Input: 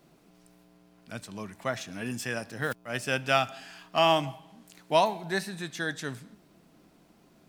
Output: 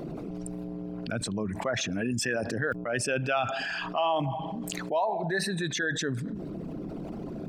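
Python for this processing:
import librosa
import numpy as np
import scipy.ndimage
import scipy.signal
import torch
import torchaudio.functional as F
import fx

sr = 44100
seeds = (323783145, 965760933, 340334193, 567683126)

y = fx.envelope_sharpen(x, sr, power=2.0)
y = fx.env_flatten(y, sr, amount_pct=70)
y = F.gain(torch.from_numpy(y), -6.0).numpy()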